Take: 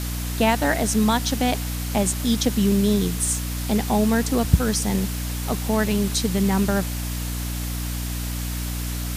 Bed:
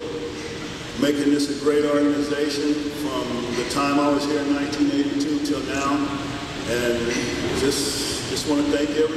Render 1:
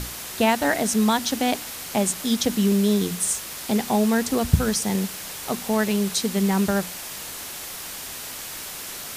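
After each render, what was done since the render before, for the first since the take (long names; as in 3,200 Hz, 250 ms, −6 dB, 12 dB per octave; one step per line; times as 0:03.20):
mains-hum notches 60/120/180/240/300 Hz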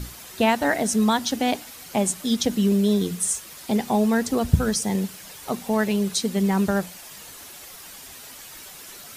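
broadband denoise 9 dB, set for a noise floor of −35 dBFS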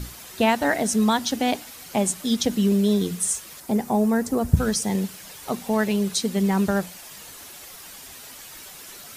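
0:03.60–0:04.57: parametric band 3,400 Hz −10.5 dB 1.5 octaves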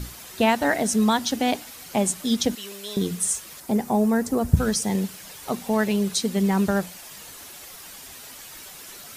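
0:02.55–0:02.97: high-pass filter 970 Hz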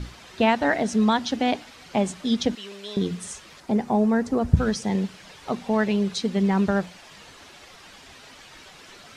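low-pass filter 4,200 Hz 12 dB per octave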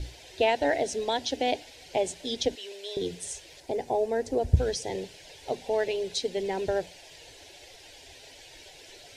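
phaser with its sweep stopped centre 500 Hz, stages 4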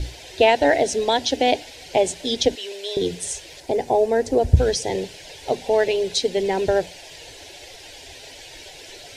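level +8.5 dB
brickwall limiter −2 dBFS, peak gain reduction 2 dB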